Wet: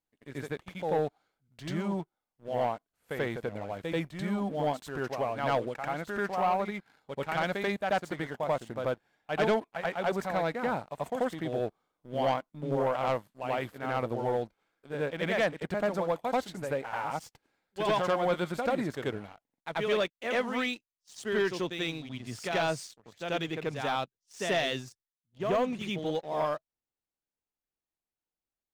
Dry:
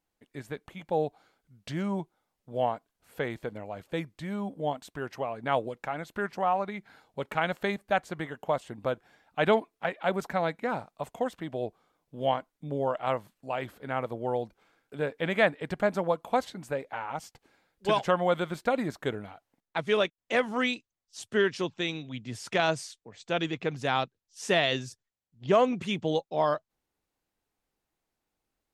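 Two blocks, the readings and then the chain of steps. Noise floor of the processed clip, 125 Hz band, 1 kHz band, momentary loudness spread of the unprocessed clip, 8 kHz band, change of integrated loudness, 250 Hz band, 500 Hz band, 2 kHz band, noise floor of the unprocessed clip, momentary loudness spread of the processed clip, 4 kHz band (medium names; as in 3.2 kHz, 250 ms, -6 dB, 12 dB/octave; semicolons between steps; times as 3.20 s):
under -85 dBFS, -0.5 dB, -1.0 dB, 15 LU, -1.0 dB, -1.5 dB, -1.0 dB, -1.5 dB, -2.0 dB, -85 dBFS, 11 LU, -2.5 dB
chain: gain riding within 4 dB 2 s; reverse echo 87 ms -6 dB; waveshaping leveller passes 2; trim -9 dB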